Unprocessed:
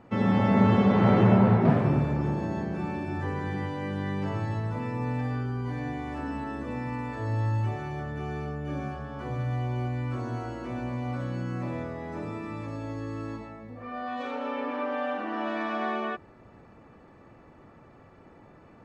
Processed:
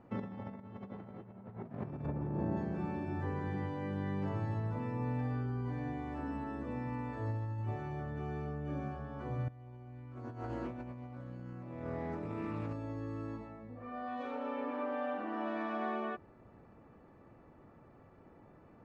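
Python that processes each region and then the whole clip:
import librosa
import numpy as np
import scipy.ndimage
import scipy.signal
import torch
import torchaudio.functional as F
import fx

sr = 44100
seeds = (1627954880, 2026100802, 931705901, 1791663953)

y = fx.chain(x, sr, fx.lowpass(hz=1400.0, slope=6),
    fx.env_flatten(amount_pct=50), at=(2.06, 2.57))
y = fx.chain(y, sr, fx.over_compress(threshold_db=-36.0, ratio=-0.5),
    fx.doppler_dist(depth_ms=0.16), at=(9.48, 12.73))
y = fx.high_shelf(y, sr, hz=2100.0, db=-9.5)
y = fx.over_compress(y, sr, threshold_db=-28.0, ratio=-0.5)
y = y * 10.0 ** (-8.0 / 20.0)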